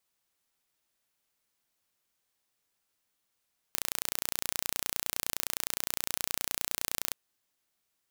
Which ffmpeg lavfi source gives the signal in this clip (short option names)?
-f lavfi -i "aevalsrc='0.668*eq(mod(n,1485),0)':d=3.39:s=44100"